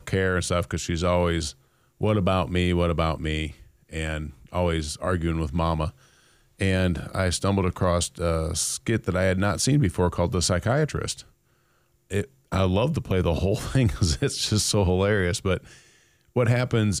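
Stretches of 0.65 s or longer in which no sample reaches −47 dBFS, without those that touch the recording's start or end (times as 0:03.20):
0:11.27–0:12.10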